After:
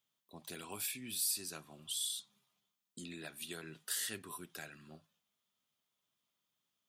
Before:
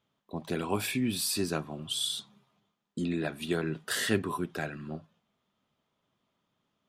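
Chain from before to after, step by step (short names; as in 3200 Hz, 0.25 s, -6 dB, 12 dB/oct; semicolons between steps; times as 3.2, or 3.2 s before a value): pre-emphasis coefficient 0.9; in parallel at +3 dB: compressor, threshold -46 dBFS, peak gain reduction 16.5 dB; on the sum: gain -5 dB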